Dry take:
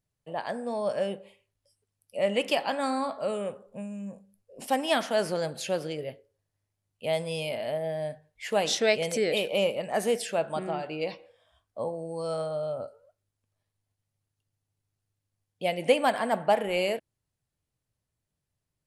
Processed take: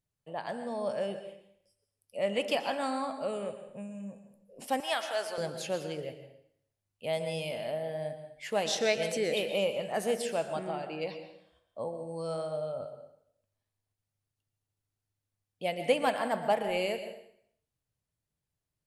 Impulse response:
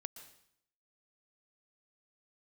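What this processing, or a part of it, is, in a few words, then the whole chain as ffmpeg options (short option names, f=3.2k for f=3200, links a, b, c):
bathroom: -filter_complex "[1:a]atrim=start_sample=2205[a];[0:a][a]afir=irnorm=-1:irlink=0,asettb=1/sr,asplit=3[b][c][d];[b]atrim=end=4.804[e];[c]atrim=start=4.8:end=5.38,asetpts=PTS-STARTPTS,afade=t=in:d=0.004:c=qsin,afade=t=out:st=0.576:d=0.004:c=qsin,highpass=670[f];[d]atrim=start=5.376[g];[e][f]acrossfade=d=0.004:c1=hsin:c2=qsin[h];[h][g]acrossfade=d=0.004:c1=qsin:c2=hsin"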